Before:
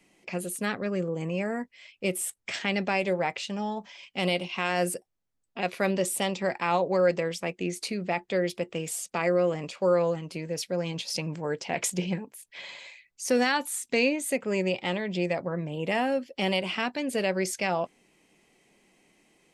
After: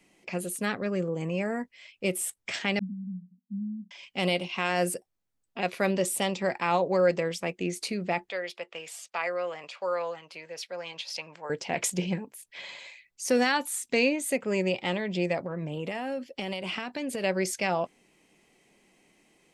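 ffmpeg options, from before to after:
-filter_complex "[0:a]asettb=1/sr,asplit=3[s0][s1][s2];[s0]atrim=end=2.794[s3];[s1]atrim=start=2.79:end=3.91,asetpts=PTS-STARTPTS,afade=t=in:d=0.004:c=qsin,afade=t=out:st=1.116:d=0.004:c=qsin,asuperpass=centerf=210:order=12:qfactor=3.1[s4];[s2]atrim=start=3.906[s5];[s3][s4]acrossfade=d=0.004:c1=hsin:c2=qsin[s6];[s6][s5]acrossfade=d=0.004:c1=qsin:c2=hsin,asettb=1/sr,asplit=3[s7][s8][s9];[s7]atrim=end=8.294[s10];[s8]atrim=start=8.29:end=11.5,asetpts=PTS-STARTPTS,afade=t=in:d=0.004:c=qsin,afade=t=out:st=3.206:d=0.004:c=qsin,acrossover=split=590 5100:gain=0.0794 1 0.251[s11][s12][s13];[s11][s12][s13]amix=inputs=3:normalize=0[s14];[s9]atrim=start=11.496[s15];[s10][s14]acrossfade=d=0.004:c1=hsin:c2=qsin[s16];[s16][s15]acrossfade=d=0.004:c1=qsin:c2=hsin,asettb=1/sr,asplit=3[s17][s18][s19];[s17]atrim=end=15.424[s20];[s18]atrim=start=15.42:end=17.24,asetpts=PTS-STARTPTS,afade=t=in:d=0.004:c=qsin,afade=t=out:st=1.816:d=0.004:c=qsin,acompressor=threshold=0.0398:ratio=10:attack=3.2:release=140:knee=1:detection=peak[s21];[s19]atrim=start=17.236[s22];[s20][s21]acrossfade=d=0.004:c1=hsin:c2=qsin[s23];[s23][s22]acrossfade=d=0.004:c1=qsin:c2=hsin"

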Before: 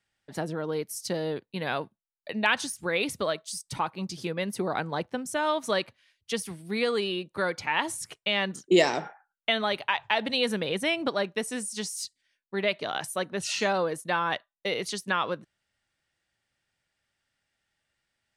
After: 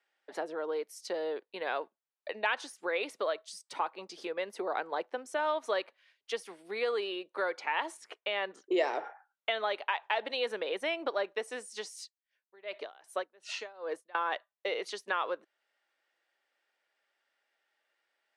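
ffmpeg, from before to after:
-filter_complex "[0:a]asettb=1/sr,asplit=3[s0][s1][s2];[s0]atrim=end=7.974[s3];[s1]atrim=start=7.97:end=9.04,asetpts=PTS-STARTPTS,afade=t=in:d=0.004:c=qsin,afade=t=out:st=1.066:d=0.004:c=qsin,aemphasis=mode=reproduction:type=cd[s4];[s2]atrim=start=9.036[s5];[s3][s4]acrossfade=d=0.004:c1=hsin:c2=qsin[s6];[s6][s5]acrossfade=d=0.004:c1=qsin:c2=hsin,asettb=1/sr,asplit=3[s7][s8][s9];[s7]atrim=end=12.014[s10];[s8]atrim=start=12.01:end=14.15,asetpts=PTS-STARTPTS,afade=t=in:d=0.004:c=qsin,afade=t=out:st=2.136:d=0.004:c=qsin,aeval=exprs='val(0)*pow(10,-29*(0.5-0.5*cos(2*PI*2.6*n/s))/20)':c=same[s11];[s9]atrim=start=14.146[s12];[s10][s11]acrossfade=d=0.004:c1=hsin:c2=qsin[s13];[s13][s12]acrossfade=d=0.004:c1=qsin:c2=hsin,acompressor=threshold=0.00794:ratio=1.5,highpass=f=390:w=0.5412,highpass=f=390:w=1.3066,aemphasis=mode=reproduction:type=75fm,volume=1.41"

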